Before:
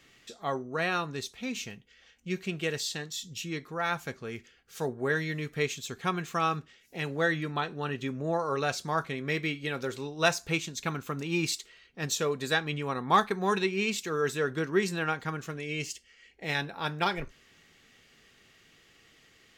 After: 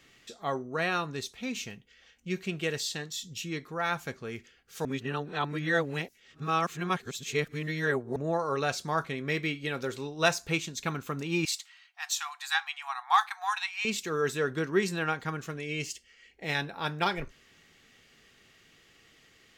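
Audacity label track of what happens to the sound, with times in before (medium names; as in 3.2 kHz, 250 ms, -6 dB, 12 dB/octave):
4.850000	8.160000	reverse
11.450000	13.850000	brick-wall FIR high-pass 690 Hz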